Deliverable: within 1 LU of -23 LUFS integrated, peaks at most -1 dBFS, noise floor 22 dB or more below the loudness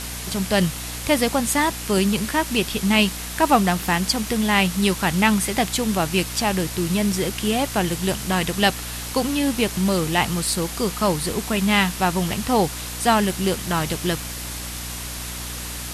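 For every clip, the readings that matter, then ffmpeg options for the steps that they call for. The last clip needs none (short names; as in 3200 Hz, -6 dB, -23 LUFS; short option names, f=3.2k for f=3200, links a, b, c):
hum 60 Hz; harmonics up to 300 Hz; hum level -33 dBFS; noise floor -31 dBFS; noise floor target -44 dBFS; loudness -21.5 LUFS; peak -2.0 dBFS; loudness target -23.0 LUFS
-> -af "bandreject=f=60:t=h:w=4,bandreject=f=120:t=h:w=4,bandreject=f=180:t=h:w=4,bandreject=f=240:t=h:w=4,bandreject=f=300:t=h:w=4"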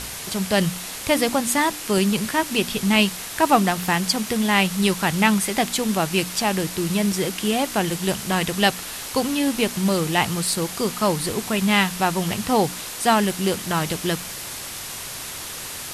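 hum none; noise floor -33 dBFS; noise floor target -44 dBFS
-> -af "afftdn=nr=11:nf=-33"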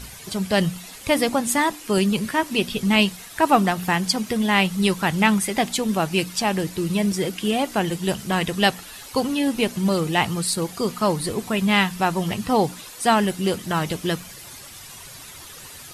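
noise floor -41 dBFS; noise floor target -44 dBFS
-> -af "afftdn=nr=6:nf=-41"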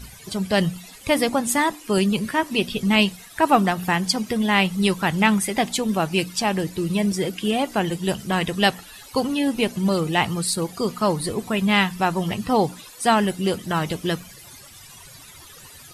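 noise floor -45 dBFS; loudness -22.0 LUFS; peak -2.5 dBFS; loudness target -23.0 LUFS
-> -af "volume=-1dB"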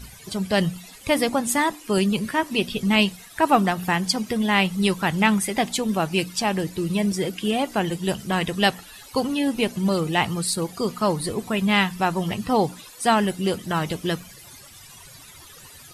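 loudness -23.0 LUFS; peak -3.5 dBFS; noise floor -46 dBFS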